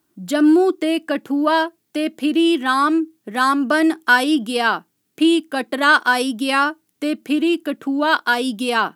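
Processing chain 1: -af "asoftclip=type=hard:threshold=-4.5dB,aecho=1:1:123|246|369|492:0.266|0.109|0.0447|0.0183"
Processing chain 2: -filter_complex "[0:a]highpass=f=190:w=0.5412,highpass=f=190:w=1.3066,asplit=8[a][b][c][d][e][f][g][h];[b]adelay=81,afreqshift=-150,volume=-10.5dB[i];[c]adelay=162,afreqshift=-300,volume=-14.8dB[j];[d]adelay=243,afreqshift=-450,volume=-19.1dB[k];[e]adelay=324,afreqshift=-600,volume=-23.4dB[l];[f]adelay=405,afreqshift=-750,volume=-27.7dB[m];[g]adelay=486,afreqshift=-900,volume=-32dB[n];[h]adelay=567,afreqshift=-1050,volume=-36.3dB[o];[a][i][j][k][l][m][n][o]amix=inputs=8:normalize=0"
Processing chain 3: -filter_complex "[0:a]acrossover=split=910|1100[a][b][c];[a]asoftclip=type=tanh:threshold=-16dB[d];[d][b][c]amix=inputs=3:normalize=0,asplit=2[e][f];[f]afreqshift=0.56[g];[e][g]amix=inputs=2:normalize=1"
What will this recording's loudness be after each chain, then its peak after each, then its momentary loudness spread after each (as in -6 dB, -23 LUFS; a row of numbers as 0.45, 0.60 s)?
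-18.0, -18.0, -23.5 LUFS; -3.0, -1.5, -6.0 dBFS; 9, 9, 9 LU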